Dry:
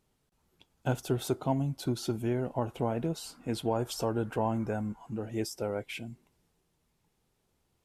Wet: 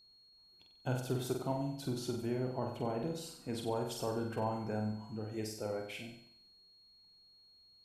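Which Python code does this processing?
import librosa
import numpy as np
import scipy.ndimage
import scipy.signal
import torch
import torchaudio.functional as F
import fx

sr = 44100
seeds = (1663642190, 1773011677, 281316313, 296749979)

y = fx.room_flutter(x, sr, wall_m=8.0, rt60_s=0.62)
y = y + 10.0 ** (-54.0 / 20.0) * np.sin(2.0 * np.pi * 4300.0 * np.arange(len(y)) / sr)
y = y * librosa.db_to_amplitude(-7.0)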